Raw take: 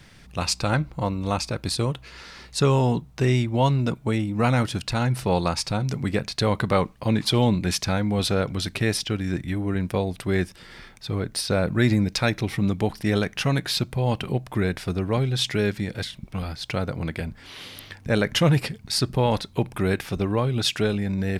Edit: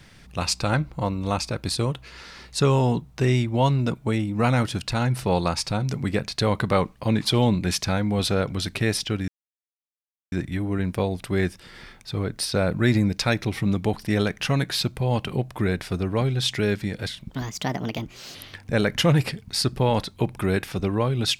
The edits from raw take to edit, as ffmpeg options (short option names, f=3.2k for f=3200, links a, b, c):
-filter_complex "[0:a]asplit=4[a][b][c][d];[a]atrim=end=9.28,asetpts=PTS-STARTPTS,afade=t=out:st=9.276:d=0.004:c=hsin,apad=pad_dur=1.04[e];[b]atrim=start=9.28:end=16.264,asetpts=PTS-STARTPTS,afade=t=in:d=0.004:c=hsin[f];[c]atrim=start=16.26:end=17.72,asetpts=PTS-STARTPTS,asetrate=61299,aresample=44100[g];[d]atrim=start=17.716[h];[e][f]concat=n=2:v=0:a=1[i];[i][g]acrossfade=d=0.004:c1=hsin:c2=hsin[j];[j][h]acrossfade=d=0.004:c1=hsin:c2=hsin"